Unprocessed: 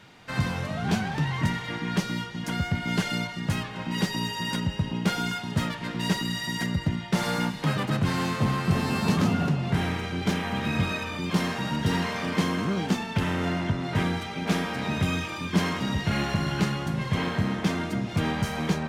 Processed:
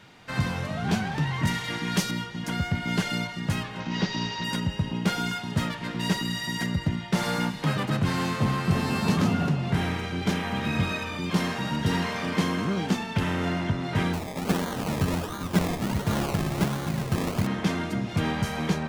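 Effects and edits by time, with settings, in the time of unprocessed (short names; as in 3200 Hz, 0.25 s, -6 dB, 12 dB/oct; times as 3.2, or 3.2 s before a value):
1.47–2.11 high shelf 3900 Hz +11 dB
3.8–4.44 CVSD 32 kbps
14.13–17.47 decimation with a swept rate 24×, swing 60% 1.4 Hz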